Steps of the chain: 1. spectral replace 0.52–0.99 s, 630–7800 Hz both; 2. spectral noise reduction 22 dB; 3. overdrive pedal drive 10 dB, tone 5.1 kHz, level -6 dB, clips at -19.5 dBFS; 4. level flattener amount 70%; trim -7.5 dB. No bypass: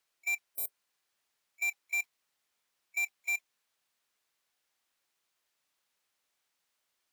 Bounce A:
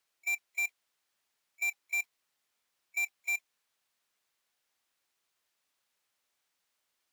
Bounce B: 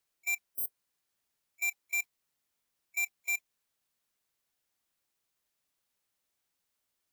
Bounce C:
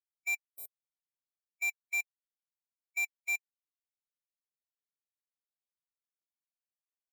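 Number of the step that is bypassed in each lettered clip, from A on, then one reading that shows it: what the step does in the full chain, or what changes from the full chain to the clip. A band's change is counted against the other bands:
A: 1, crest factor change -1.5 dB; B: 3, crest factor change +3.5 dB; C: 4, crest factor change -2.0 dB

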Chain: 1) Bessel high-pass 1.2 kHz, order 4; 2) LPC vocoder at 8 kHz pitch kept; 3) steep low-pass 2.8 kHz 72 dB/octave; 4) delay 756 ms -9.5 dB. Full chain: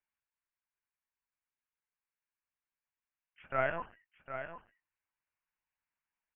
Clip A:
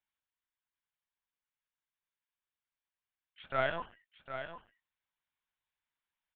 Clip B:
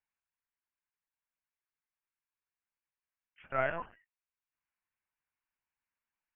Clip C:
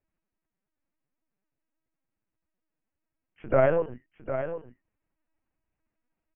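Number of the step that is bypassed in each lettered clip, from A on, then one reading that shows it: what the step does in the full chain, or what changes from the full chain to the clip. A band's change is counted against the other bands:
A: 3, momentary loudness spread change +3 LU; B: 4, momentary loudness spread change -4 LU; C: 1, 2 kHz band -12.5 dB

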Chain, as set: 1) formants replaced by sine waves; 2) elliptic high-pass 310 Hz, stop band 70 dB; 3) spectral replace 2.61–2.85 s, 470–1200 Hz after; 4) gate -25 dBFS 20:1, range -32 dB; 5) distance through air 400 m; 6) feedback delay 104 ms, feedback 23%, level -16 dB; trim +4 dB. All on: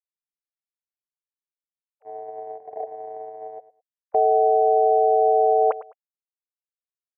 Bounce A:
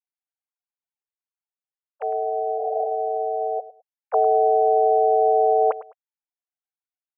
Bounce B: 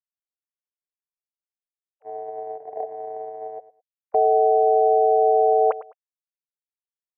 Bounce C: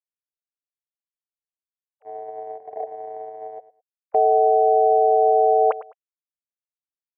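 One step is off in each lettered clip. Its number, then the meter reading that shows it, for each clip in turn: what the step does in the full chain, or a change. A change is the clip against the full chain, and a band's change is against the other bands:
4, momentary loudness spread change -9 LU; 2, momentary loudness spread change -1 LU; 5, loudness change +1.5 LU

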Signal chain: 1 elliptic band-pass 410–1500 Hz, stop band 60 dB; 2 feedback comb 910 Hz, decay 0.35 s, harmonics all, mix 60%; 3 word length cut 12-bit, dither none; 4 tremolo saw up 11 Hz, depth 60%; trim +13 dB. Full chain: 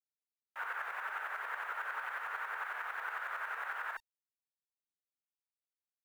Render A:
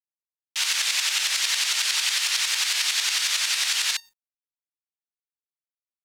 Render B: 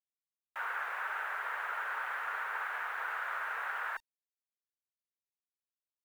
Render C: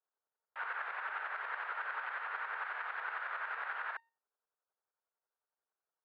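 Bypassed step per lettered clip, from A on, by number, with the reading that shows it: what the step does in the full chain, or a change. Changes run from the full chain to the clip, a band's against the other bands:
1, 1 kHz band -36.0 dB; 4, crest factor change -2.0 dB; 3, distortion -27 dB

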